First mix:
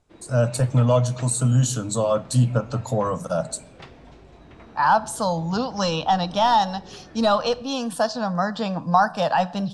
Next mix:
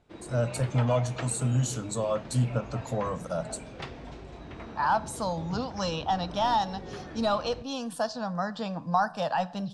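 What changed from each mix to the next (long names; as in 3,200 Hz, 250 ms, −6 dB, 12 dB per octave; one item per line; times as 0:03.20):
speech −7.5 dB
background +4.0 dB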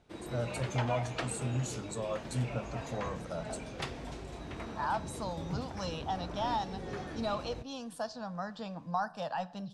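speech −8.0 dB
background: remove high-frequency loss of the air 96 metres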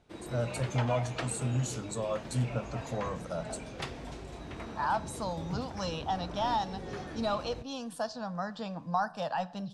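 speech +3.0 dB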